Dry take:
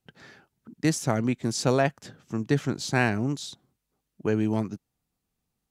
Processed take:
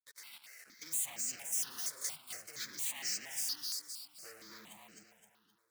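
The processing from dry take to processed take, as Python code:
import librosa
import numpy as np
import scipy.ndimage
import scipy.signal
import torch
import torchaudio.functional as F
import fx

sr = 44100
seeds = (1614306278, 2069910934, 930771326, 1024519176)

y = fx.partial_stretch(x, sr, pct=108)
y = scipy.signal.sosfilt(scipy.signal.butter(2, 7200.0, 'lowpass', fs=sr, output='sos'), y)
y = fx.low_shelf(y, sr, hz=200.0, db=-5.5)
y = fx.notch(y, sr, hz=400.0, q=12.0)
y = fx.over_compress(y, sr, threshold_db=-32.0, ratio=-1.0)
y = fx.leveller(y, sr, passes=5)
y = fx.level_steps(y, sr, step_db=10)
y = np.diff(y, prepend=0.0)
y = fx.echo_feedback(y, sr, ms=260, feedback_pct=46, wet_db=-3.5)
y = fx.phaser_held(y, sr, hz=4.3, low_hz=760.0, high_hz=3500.0)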